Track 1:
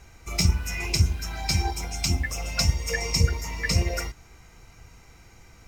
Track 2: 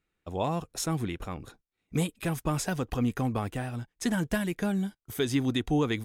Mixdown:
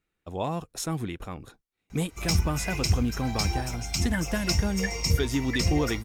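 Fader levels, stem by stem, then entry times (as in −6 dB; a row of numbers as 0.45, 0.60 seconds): −3.0, −0.5 decibels; 1.90, 0.00 seconds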